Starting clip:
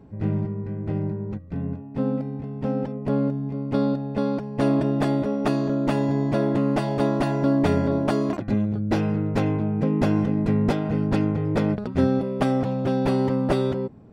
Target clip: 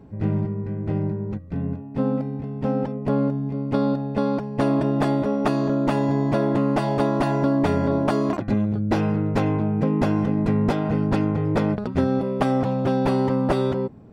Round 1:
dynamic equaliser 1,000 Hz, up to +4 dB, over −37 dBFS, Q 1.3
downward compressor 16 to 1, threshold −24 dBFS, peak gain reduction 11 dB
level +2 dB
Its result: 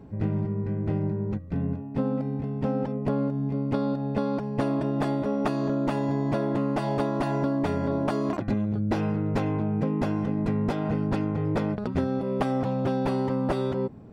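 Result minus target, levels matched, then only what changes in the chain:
downward compressor: peak gain reduction +6 dB
change: downward compressor 16 to 1, threshold −17.5 dBFS, peak gain reduction 5 dB

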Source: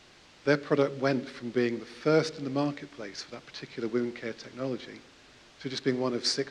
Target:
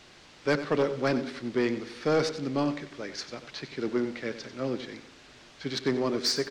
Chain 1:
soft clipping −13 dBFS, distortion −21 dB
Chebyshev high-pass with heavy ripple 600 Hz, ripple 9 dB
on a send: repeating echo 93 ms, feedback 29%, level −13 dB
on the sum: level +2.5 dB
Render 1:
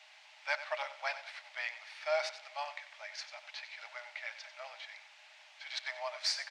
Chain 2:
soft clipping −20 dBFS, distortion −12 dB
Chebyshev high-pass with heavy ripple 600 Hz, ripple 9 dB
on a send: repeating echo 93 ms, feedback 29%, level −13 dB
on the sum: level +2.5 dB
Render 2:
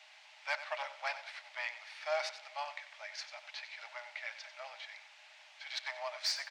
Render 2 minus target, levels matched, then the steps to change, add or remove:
500 Hz band −5.0 dB
remove: Chebyshev high-pass with heavy ripple 600 Hz, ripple 9 dB

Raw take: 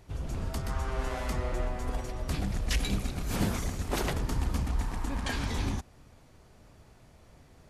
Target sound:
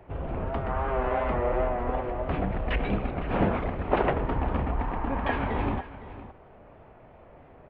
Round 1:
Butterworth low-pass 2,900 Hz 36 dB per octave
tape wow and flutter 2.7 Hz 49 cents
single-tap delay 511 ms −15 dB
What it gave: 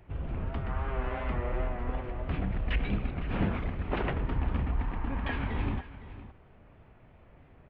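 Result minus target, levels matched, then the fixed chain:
500 Hz band −5.5 dB
Butterworth low-pass 2,900 Hz 36 dB per octave
parametric band 650 Hz +11.5 dB 2.3 octaves
tape wow and flutter 2.7 Hz 49 cents
single-tap delay 511 ms −15 dB

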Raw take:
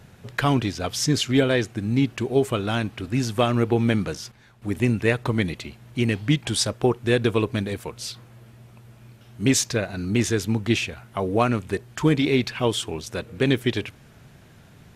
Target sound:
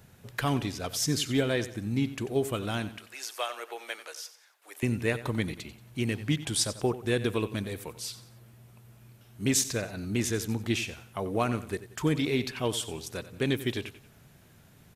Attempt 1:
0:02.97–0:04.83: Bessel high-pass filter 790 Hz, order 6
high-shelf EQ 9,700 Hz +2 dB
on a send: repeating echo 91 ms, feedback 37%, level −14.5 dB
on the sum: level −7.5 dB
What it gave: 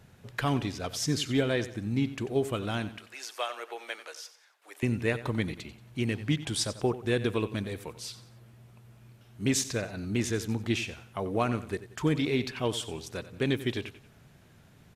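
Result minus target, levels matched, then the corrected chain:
8,000 Hz band −3.5 dB
0:02.97–0:04.83: Bessel high-pass filter 790 Hz, order 6
high-shelf EQ 9,700 Hz +14 dB
on a send: repeating echo 91 ms, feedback 37%, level −14.5 dB
on the sum: level −7.5 dB

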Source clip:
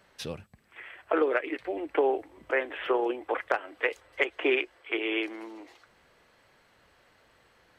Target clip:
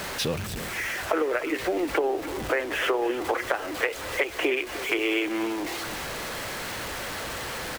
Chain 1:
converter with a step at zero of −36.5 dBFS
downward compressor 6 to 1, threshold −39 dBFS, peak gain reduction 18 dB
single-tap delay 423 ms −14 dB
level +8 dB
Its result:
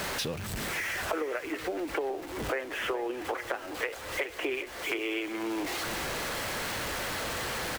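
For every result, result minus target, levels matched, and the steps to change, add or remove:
echo 120 ms late; downward compressor: peak gain reduction +7 dB
change: single-tap delay 303 ms −14 dB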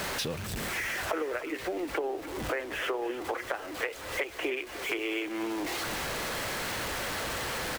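downward compressor: peak gain reduction +7 dB
change: downward compressor 6 to 1, threshold −30.5 dBFS, peak gain reduction 10.5 dB

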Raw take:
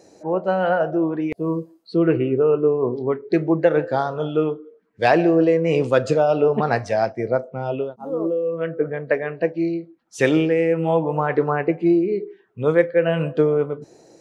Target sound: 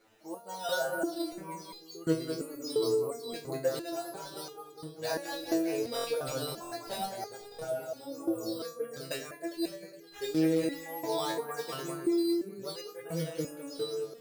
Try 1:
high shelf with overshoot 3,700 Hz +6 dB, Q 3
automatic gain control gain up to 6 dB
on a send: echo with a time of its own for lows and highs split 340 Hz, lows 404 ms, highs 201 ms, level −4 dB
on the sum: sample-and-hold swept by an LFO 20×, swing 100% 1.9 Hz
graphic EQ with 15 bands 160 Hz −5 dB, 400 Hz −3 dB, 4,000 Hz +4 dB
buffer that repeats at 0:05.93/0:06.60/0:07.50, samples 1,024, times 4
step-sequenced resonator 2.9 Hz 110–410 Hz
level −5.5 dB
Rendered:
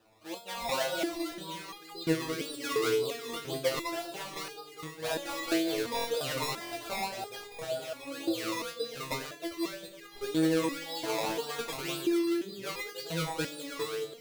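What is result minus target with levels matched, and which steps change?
sample-and-hold swept by an LFO: distortion +10 dB
change: sample-and-hold swept by an LFO 7×, swing 100% 1.9 Hz

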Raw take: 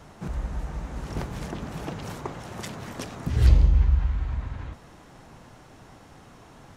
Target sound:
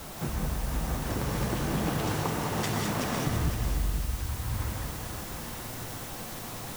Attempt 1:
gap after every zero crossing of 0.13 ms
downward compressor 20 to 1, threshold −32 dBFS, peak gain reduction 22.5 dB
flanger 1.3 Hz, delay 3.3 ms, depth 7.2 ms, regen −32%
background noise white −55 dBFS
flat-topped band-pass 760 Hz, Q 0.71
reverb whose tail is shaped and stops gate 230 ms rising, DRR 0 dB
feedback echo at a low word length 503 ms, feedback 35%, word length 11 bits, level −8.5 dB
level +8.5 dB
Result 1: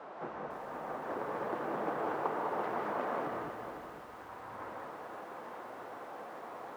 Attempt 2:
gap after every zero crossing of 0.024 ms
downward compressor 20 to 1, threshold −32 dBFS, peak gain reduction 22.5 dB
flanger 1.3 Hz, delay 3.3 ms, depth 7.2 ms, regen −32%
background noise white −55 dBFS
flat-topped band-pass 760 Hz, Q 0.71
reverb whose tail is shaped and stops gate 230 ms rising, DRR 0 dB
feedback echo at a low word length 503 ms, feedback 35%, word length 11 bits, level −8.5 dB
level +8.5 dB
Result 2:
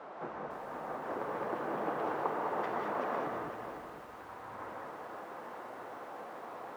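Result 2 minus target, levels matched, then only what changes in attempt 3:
1,000 Hz band +7.0 dB
remove: flat-topped band-pass 760 Hz, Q 0.71

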